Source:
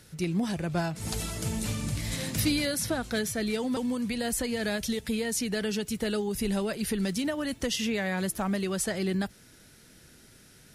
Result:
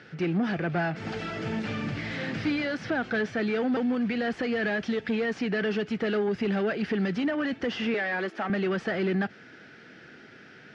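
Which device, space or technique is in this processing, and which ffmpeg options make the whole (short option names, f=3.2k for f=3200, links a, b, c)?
overdrive pedal into a guitar cabinet: -filter_complex "[0:a]asplit=2[a][b];[b]highpass=f=720:p=1,volume=22dB,asoftclip=type=tanh:threshold=-16.5dB[c];[a][c]amix=inputs=2:normalize=0,lowpass=f=1.1k:p=1,volume=-6dB,highpass=110,equalizer=f=570:t=q:w=4:g=-5,equalizer=f=1k:t=q:w=4:g=-9,equalizer=f=1.6k:t=q:w=4:g=4,equalizer=f=3.9k:t=q:w=4:g=-7,lowpass=f=4.5k:w=0.5412,lowpass=f=4.5k:w=1.3066,asettb=1/sr,asplit=3[d][e][f];[d]atrim=end=7.944[g];[e]atrim=start=7.94:end=8.5,asetpts=PTS-STARTPTS,afade=t=in:d=0.004:c=qsin,afade=t=out:st=0.556:d=0.004:c=qsin,highpass=f=250:w=0.5412,highpass=f=250:w=1.3066[h];[f]atrim=start=8.496[i];[g][h]acrossfade=d=0.004:c1=hsin:c2=qsin[j];[j][i]acrossfade=d=0.004:c1=qsin:c2=hsin"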